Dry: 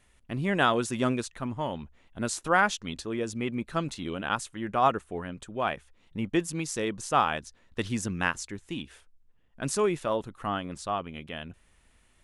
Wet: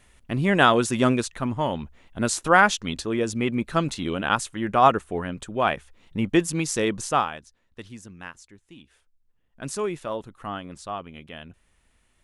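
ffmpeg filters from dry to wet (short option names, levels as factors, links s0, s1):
-af "volume=6.68,afade=t=out:st=7:d=0.31:silence=0.251189,afade=t=out:st=7.31:d=0.71:silence=0.473151,afade=t=in:st=8.8:d=0.88:silence=0.316228"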